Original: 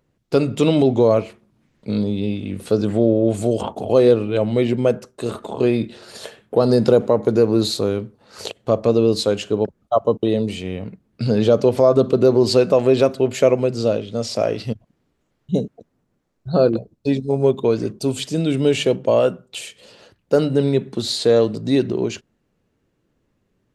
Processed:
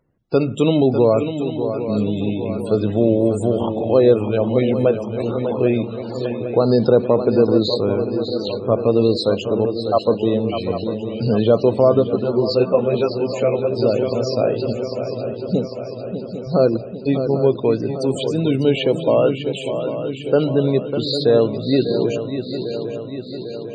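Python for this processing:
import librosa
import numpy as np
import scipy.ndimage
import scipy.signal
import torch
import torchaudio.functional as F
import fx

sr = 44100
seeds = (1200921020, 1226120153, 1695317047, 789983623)

y = fx.echo_swing(x, sr, ms=799, ratio=3, feedback_pct=60, wet_db=-9)
y = fx.spec_topn(y, sr, count=64)
y = fx.ensemble(y, sr, at=(11.99, 13.75), fade=0.02)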